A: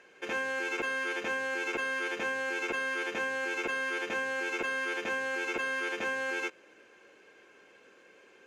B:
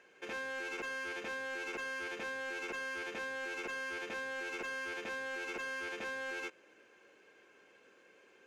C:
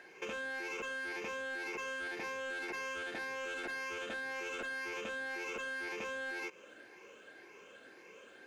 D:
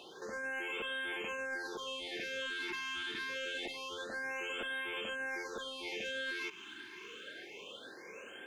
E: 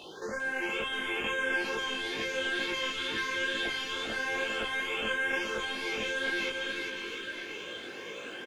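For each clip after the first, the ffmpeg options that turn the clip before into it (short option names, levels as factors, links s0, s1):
-af "asoftclip=type=tanh:threshold=0.0316,volume=0.562"
-af "afftfilt=real='re*pow(10,8/40*sin(2*PI*(0.79*log(max(b,1)*sr/1024/100)/log(2)-(1.9)*(pts-256)/sr)))':imag='im*pow(10,8/40*sin(2*PI*(0.79*log(max(b,1)*sr/1024/100)/log(2)-(1.9)*(pts-256)/sr)))':win_size=1024:overlap=0.75,alimiter=level_in=3.98:limit=0.0631:level=0:latency=1:release=19,volume=0.251,acompressor=threshold=0.00562:ratio=6,volume=2.11"
-af "equalizer=f=3400:t=o:w=0.48:g=13,alimiter=level_in=4.73:limit=0.0631:level=0:latency=1:release=21,volume=0.211,afftfilt=real='re*(1-between(b*sr/1024,570*pow(5300/570,0.5+0.5*sin(2*PI*0.26*pts/sr))/1.41,570*pow(5300/570,0.5+0.5*sin(2*PI*0.26*pts/sr))*1.41))':imag='im*(1-between(b*sr/1024,570*pow(5300/570,0.5+0.5*sin(2*PI*0.26*pts/sr))/1.41,570*pow(5300/570,0.5+0.5*sin(2*PI*0.26*pts/sr))*1.41))':win_size=1024:overlap=0.75,volume=1.88"
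-filter_complex "[0:a]lowshelf=f=120:g=9.5,asplit=2[s0][s1];[s1]aecho=0:1:400|700|925|1094|1220:0.631|0.398|0.251|0.158|0.1[s2];[s0][s2]amix=inputs=2:normalize=0,flanger=delay=17.5:depth=2.8:speed=2.2,volume=2.66"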